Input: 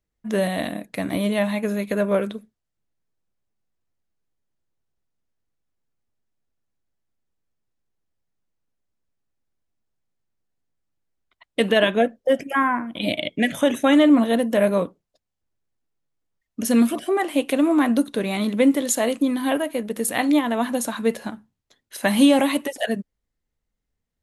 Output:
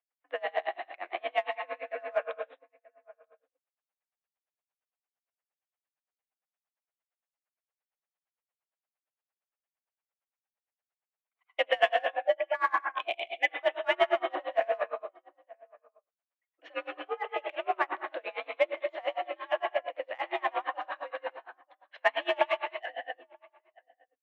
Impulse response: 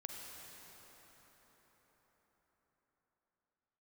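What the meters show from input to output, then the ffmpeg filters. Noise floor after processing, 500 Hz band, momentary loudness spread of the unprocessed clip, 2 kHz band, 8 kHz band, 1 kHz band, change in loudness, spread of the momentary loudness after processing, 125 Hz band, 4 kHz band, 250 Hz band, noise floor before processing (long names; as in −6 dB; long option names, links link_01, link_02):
below −85 dBFS, −8.5 dB, 11 LU, −5.0 dB, below −35 dB, −4.0 dB, −11.0 dB, 12 LU, below −35 dB, −9.5 dB, −31.5 dB, −81 dBFS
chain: -filter_complex "[0:a]highpass=frequency=530:width_type=q:width=0.5412,highpass=frequency=530:width_type=q:width=1.307,lowpass=frequency=2900:width_type=q:width=0.5176,lowpass=frequency=2900:width_type=q:width=0.7071,lowpass=frequency=2900:width_type=q:width=1.932,afreqshift=66,asplit=2[link_01][link_02];[link_02]adelay=932.9,volume=-25dB,highshelf=frequency=4000:gain=-21[link_03];[link_01][link_03]amix=inputs=2:normalize=0[link_04];[1:a]atrim=start_sample=2205,atrim=end_sample=6615,asetrate=24255,aresample=44100[link_05];[link_04][link_05]afir=irnorm=-1:irlink=0,asplit=2[link_06][link_07];[link_07]asoftclip=type=hard:threshold=-21.5dB,volume=-12dB[link_08];[link_06][link_08]amix=inputs=2:normalize=0,aeval=exprs='val(0)*pow(10,-30*(0.5-0.5*cos(2*PI*8.7*n/s))/20)':channel_layout=same"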